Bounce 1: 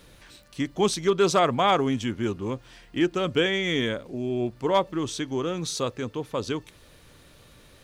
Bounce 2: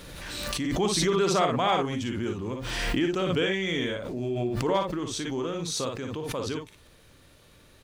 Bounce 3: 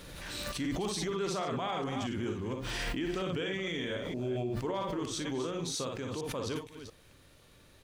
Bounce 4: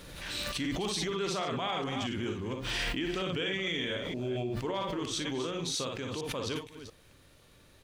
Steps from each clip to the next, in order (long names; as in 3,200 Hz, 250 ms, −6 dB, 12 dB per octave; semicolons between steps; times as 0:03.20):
on a send: ambience of single reflections 47 ms −8.5 dB, 58 ms −5 dB; on the sum: background raised ahead of every attack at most 28 dB per second; level −5 dB
delay that plays each chunk backwards 230 ms, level −11 dB; brickwall limiter −22 dBFS, peak gain reduction 10.5 dB; level −4 dB
dynamic equaliser 3,000 Hz, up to +6 dB, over −53 dBFS, Q 0.97